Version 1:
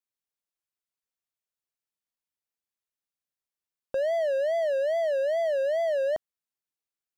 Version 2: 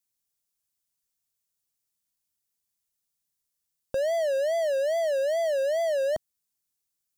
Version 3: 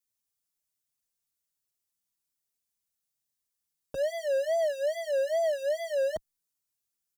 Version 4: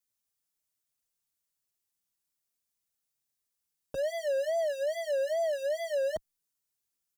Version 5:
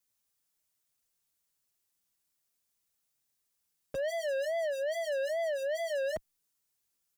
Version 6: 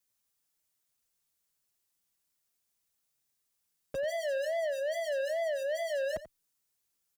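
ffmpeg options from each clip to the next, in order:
-af "bass=f=250:g=9,treble=f=4k:g=12"
-filter_complex "[0:a]asplit=2[a][b];[b]adelay=5,afreqshift=-1.2[c];[a][c]amix=inputs=2:normalize=1"
-af "alimiter=level_in=0.5dB:limit=-24dB:level=0:latency=1:release=64,volume=-0.5dB"
-af "asoftclip=type=tanh:threshold=-34dB,volume=4dB"
-filter_complex "[0:a]asplit=2[a][b];[b]adelay=87.46,volume=-14dB,highshelf=f=4k:g=-1.97[c];[a][c]amix=inputs=2:normalize=0"

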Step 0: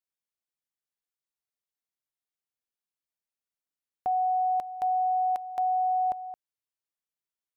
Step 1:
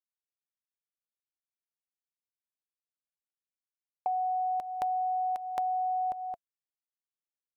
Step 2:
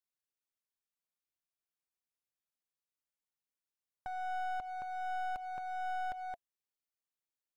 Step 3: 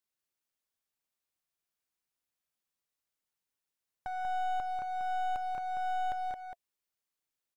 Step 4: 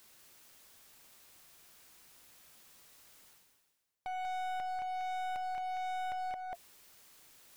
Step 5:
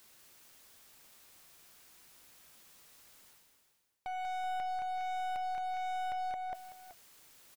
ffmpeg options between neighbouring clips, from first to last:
-af "bandreject=f=690:w=12,agate=range=-33dB:threshold=-38dB:ratio=3:detection=peak,acompressor=threshold=-36dB:ratio=6,volume=6.5dB"
-af "alimiter=level_in=5dB:limit=-24dB:level=0:latency=1:release=458,volume=-5dB,aeval=exprs='clip(val(0),-1,0.00794)':c=same,volume=-1.5dB"
-af "aecho=1:1:190:0.531,volume=3dB"
-af "areverse,acompressor=mode=upward:threshold=-37dB:ratio=2.5,areverse,asoftclip=type=hard:threshold=-34.5dB"
-af "aecho=1:1:379:0.237"

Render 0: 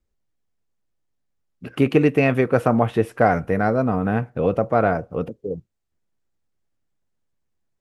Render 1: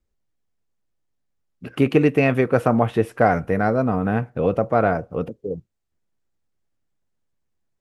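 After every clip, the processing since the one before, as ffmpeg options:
-af anull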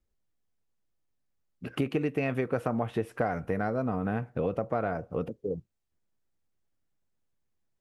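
-af "acompressor=threshold=-23dB:ratio=4,volume=-3.5dB"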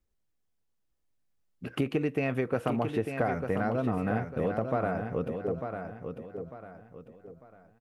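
-af "aecho=1:1:898|1796|2694|3592:0.447|0.152|0.0516|0.0176"

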